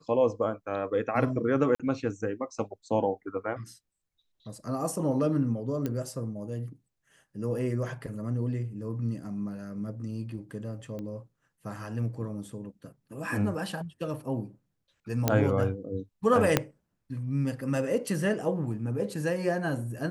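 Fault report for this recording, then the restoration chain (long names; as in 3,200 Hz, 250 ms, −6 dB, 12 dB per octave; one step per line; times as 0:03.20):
0:01.75–0:01.80: drop-out 46 ms
0:05.86: click −18 dBFS
0:10.99: click −27 dBFS
0:15.28: click −8 dBFS
0:16.57: click −6 dBFS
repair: click removal
repair the gap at 0:01.75, 46 ms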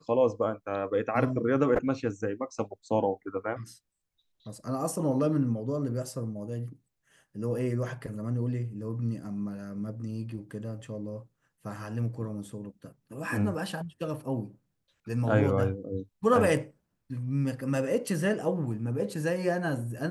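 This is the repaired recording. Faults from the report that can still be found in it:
0:16.57: click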